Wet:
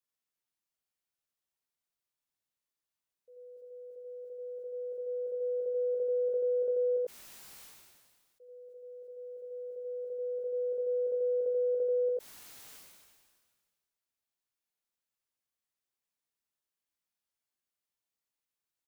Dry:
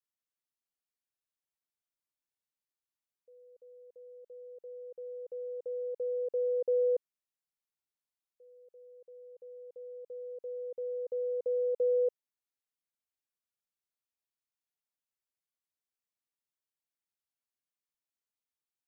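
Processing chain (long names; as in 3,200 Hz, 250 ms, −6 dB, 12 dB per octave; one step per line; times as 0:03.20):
downward compressor, threshold −35 dBFS, peak gain reduction 8.5 dB
double-tracking delay 16 ms −8 dB
on a send: single-tap delay 85 ms −3.5 dB
on the sum: level that may fall only so fast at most 34 dB per second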